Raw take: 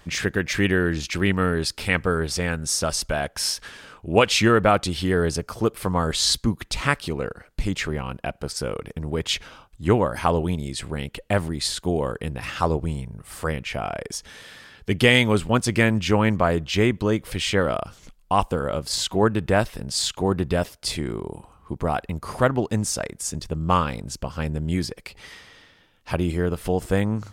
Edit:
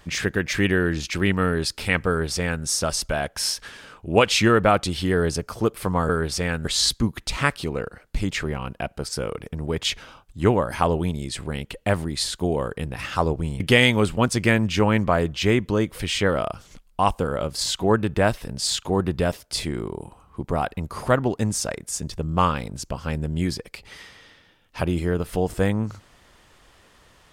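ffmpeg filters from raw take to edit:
ffmpeg -i in.wav -filter_complex "[0:a]asplit=4[link_01][link_02][link_03][link_04];[link_01]atrim=end=6.092[link_05];[link_02]atrim=start=2.078:end=2.642[link_06];[link_03]atrim=start=6.088:end=13.042[link_07];[link_04]atrim=start=14.918[link_08];[link_05][link_06]acrossfade=duration=0.004:curve1=hsin:curve2=hsin[link_09];[link_09][link_07]acrossfade=duration=0.004:curve1=hsin:curve2=hsin[link_10];[link_10][link_08]acrossfade=duration=0.004:curve1=hsin:curve2=hsin" out.wav

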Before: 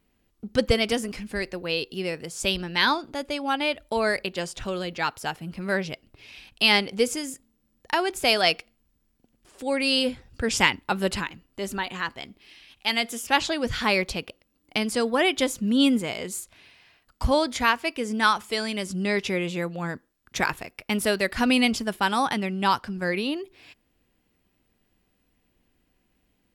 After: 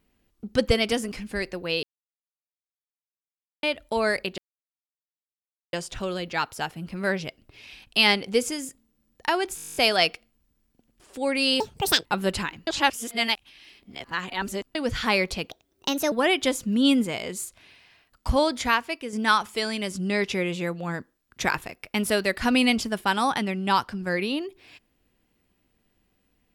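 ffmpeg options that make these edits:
ffmpeg -i in.wav -filter_complex "[0:a]asplit=21[link_01][link_02][link_03][link_04][link_05][link_06][link_07][link_08][link_09][link_10][link_11][link_12][link_13][link_14][link_15][link_16][link_17][link_18][link_19][link_20][link_21];[link_01]atrim=end=1.83,asetpts=PTS-STARTPTS,afade=type=out:start_time=1.826:duration=0.004:curve=hsin[link_22];[link_02]atrim=start=1.83:end=3.63,asetpts=PTS-STARTPTS,volume=0[link_23];[link_03]atrim=start=3.63:end=4.38,asetpts=PTS-STARTPTS,afade=type=in:duration=0.004:curve=hsin,afade=type=out:start_time=0.746:duration=0.004:curve=hsin,apad=pad_dur=1.35[link_24];[link_04]atrim=start=4.38:end=8.232,asetpts=PTS-STARTPTS,afade=type=in:duration=0.004:curve=hsin[link_25];[link_05]atrim=start=8.208:end=8.232[link_26];[link_06]atrim=start=8.208:end=8.232[link_27];[link_07]atrim=start=8.208:end=8.232[link_28];[link_08]atrim=start=8.208:end=8.232[link_29];[link_09]atrim=start=8.208:end=8.232[link_30];[link_10]atrim=start=8.208:end=8.232[link_31];[link_11]atrim=start=8.208:end=8.232[link_32];[link_12]atrim=start=8.208:end=8.232[link_33];[link_13]atrim=start=8.208:end=8.232[link_34];[link_14]atrim=start=8.208:end=10.054[link_35];[link_15]atrim=start=10.05:end=10.83,asetpts=PTS-STARTPTS,asetrate=76293,aresample=44100,atrim=end_sample=19883,asetpts=PTS-STARTPTS[link_36];[link_16]atrim=start=10.826:end=11.452[link_37];[link_17]atrim=start=11.448:end=13.532,asetpts=PTS-STARTPTS,areverse[link_38];[link_18]atrim=start=13.528:end=14.284[link_39];[link_19]atrim=start=14.28:end=15.07,asetpts=PTS-STARTPTS,asetrate=56448,aresample=44100[link_40];[link_20]atrim=start=15.066:end=18.08,asetpts=PTS-STARTPTS,afade=type=out:start_time=2.514:duration=0.5:silence=0.473151[link_41];[link_21]atrim=start=18.08,asetpts=PTS-STARTPTS,afade=type=in:duration=0.004:curve=hsin:silence=0.473151[link_42];[link_22][link_23][link_24][link_25]concat=n=4:v=0:a=1[link_43];[link_43][link_26]acrossfade=duration=0.004:curve1=hsin:curve2=hsin[link_44];[link_44][link_27]acrossfade=duration=0.004:curve1=hsin:curve2=hsin[link_45];[link_45][link_28]acrossfade=duration=0.004:curve1=hsin:curve2=hsin[link_46];[link_46][link_29]acrossfade=duration=0.004:curve1=hsin:curve2=hsin[link_47];[link_47][link_30]acrossfade=duration=0.004:curve1=hsin:curve2=hsin[link_48];[link_48][link_31]acrossfade=duration=0.004:curve1=hsin:curve2=hsin[link_49];[link_49][link_32]acrossfade=duration=0.004:curve1=hsin:curve2=hsin[link_50];[link_50][link_33]acrossfade=duration=0.004:curve1=hsin:curve2=hsin[link_51];[link_51][link_34]acrossfade=duration=0.004:curve1=hsin:curve2=hsin[link_52];[link_52][link_35]acrossfade=duration=0.004:curve1=hsin:curve2=hsin[link_53];[link_53][link_36]acrossfade=duration=0.004:curve1=hsin:curve2=hsin[link_54];[link_54][link_37]acrossfade=duration=0.004:curve1=hsin:curve2=hsin[link_55];[link_55][link_38]acrossfade=duration=0.004:curve1=hsin:curve2=hsin[link_56];[link_56][link_39]acrossfade=duration=0.004:curve1=hsin:curve2=hsin[link_57];[link_57][link_40]acrossfade=duration=0.004:curve1=hsin:curve2=hsin[link_58];[link_41][link_42]concat=n=2:v=0:a=1[link_59];[link_58][link_59]acrossfade=duration=0.004:curve1=hsin:curve2=hsin" out.wav

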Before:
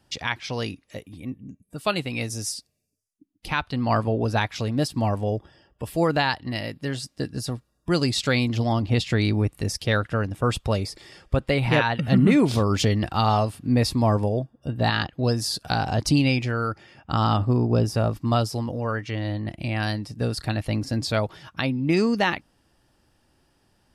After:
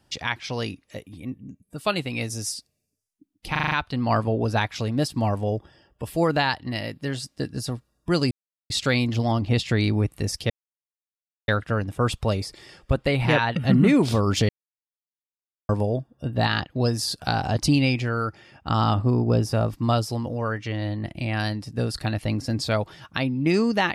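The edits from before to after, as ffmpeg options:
ffmpeg -i in.wav -filter_complex "[0:a]asplit=10[link_01][link_02][link_03][link_04][link_05][link_06][link_07][link_08][link_09][link_10];[link_01]atrim=end=3.552[link_11];[link_02]atrim=start=3.508:end=3.552[link_12];[link_03]atrim=start=3.508:end=3.552[link_13];[link_04]atrim=start=3.508:end=3.552[link_14];[link_05]atrim=start=3.508:end=3.552[link_15];[link_06]atrim=start=3.508:end=8.11,asetpts=PTS-STARTPTS,afade=type=out:start_time=4.598:duration=0.004:curve=hsin,apad=pad_dur=0.39[link_16];[link_07]atrim=start=8.11:end=9.91,asetpts=PTS-STARTPTS,afade=type=in:duration=0.004:curve=hsin,afade=type=out:start_time=1.796:duration=0.004:curve=hsin,apad=pad_dur=0.98[link_17];[link_08]atrim=start=9.91:end=12.92,asetpts=PTS-STARTPTS,afade=type=in:duration=0.004:curve=hsin,afade=type=out:start_time=3.006:duration=0.004:curve=hsin[link_18];[link_09]atrim=start=12.92:end=14.12,asetpts=PTS-STARTPTS,volume=0[link_19];[link_10]atrim=start=14.12,asetpts=PTS-STARTPTS,afade=type=in:duration=0.004:curve=hsin[link_20];[link_11][link_12]acrossfade=duration=0.004:curve1=hsin:curve2=hsin[link_21];[link_21][link_13]acrossfade=duration=0.004:curve1=hsin:curve2=hsin[link_22];[link_22][link_14]acrossfade=duration=0.004:curve1=hsin:curve2=hsin[link_23];[link_23][link_15]acrossfade=duration=0.004:curve1=hsin:curve2=hsin[link_24];[link_16][link_17][link_18][link_19][link_20]concat=n=5:v=0:a=1[link_25];[link_24][link_25]acrossfade=duration=0.004:curve1=hsin:curve2=hsin" out.wav

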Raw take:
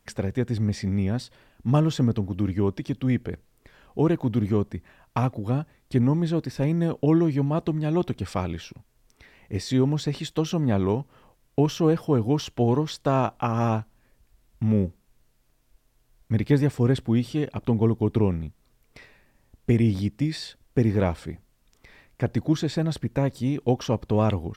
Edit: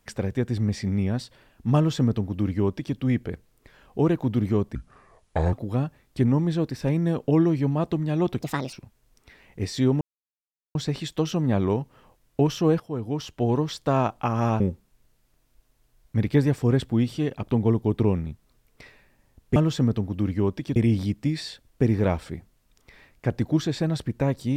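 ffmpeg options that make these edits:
ffmpeg -i in.wav -filter_complex "[0:a]asplit=10[link_01][link_02][link_03][link_04][link_05][link_06][link_07][link_08][link_09][link_10];[link_01]atrim=end=4.754[link_11];[link_02]atrim=start=4.75:end=5.28,asetpts=PTS-STARTPTS,asetrate=29988,aresample=44100,atrim=end_sample=34372,asetpts=PTS-STARTPTS[link_12];[link_03]atrim=start=5.276:end=8.164[link_13];[link_04]atrim=start=8.16:end=8.66,asetpts=PTS-STARTPTS,asetrate=68796,aresample=44100[link_14];[link_05]atrim=start=8.656:end=9.94,asetpts=PTS-STARTPTS,afade=type=out:start_time=1.28:duration=0.004:curve=hsin,apad=pad_dur=0.74[link_15];[link_06]atrim=start=9.94:end=11.99,asetpts=PTS-STARTPTS,afade=type=in:duration=0.004:curve=hsin,afade=type=out:start_time=2.046:duration=0.004:curve=hsin:silence=0.237137[link_16];[link_07]atrim=start=11.99:end=13.792,asetpts=PTS-STARTPTS,afade=type=in:duration=0.87:silence=0.237137[link_17];[link_08]atrim=start=14.758:end=19.722[link_18];[link_09]atrim=start=1.758:end=2.962[link_19];[link_10]atrim=start=19.718[link_20];[link_11][link_12]acrossfade=duration=0.004:curve1=hsin:curve2=hsin[link_21];[link_21][link_13]acrossfade=duration=0.004:curve1=hsin:curve2=hsin[link_22];[link_22][link_14]acrossfade=duration=0.004:curve1=hsin:curve2=hsin[link_23];[link_15][link_16][link_17]concat=n=3:v=0:a=1[link_24];[link_23][link_24]acrossfade=duration=0.004:curve1=hsin:curve2=hsin[link_25];[link_25][link_18]acrossfade=duration=0.004:curve1=hsin:curve2=hsin[link_26];[link_26][link_19]acrossfade=duration=0.004:curve1=hsin:curve2=hsin[link_27];[link_27][link_20]acrossfade=duration=0.004:curve1=hsin:curve2=hsin" out.wav

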